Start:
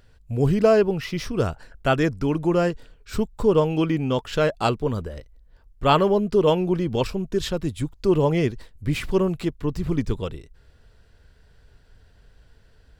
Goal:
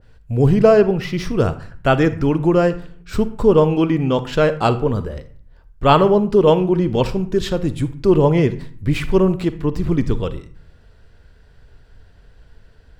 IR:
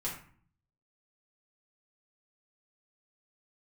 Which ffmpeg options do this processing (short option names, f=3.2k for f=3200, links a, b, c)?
-filter_complex "[0:a]highshelf=f=3.8k:g=-6,asplit=2[a][b];[1:a]atrim=start_sample=2205,adelay=43[c];[b][c]afir=irnorm=-1:irlink=0,volume=-15.5dB[d];[a][d]amix=inputs=2:normalize=0,adynamicequalizer=threshold=0.0251:dfrequency=1600:dqfactor=0.7:tfrequency=1600:tqfactor=0.7:attack=5:release=100:ratio=0.375:range=1.5:mode=cutabove:tftype=highshelf,volume=5.5dB"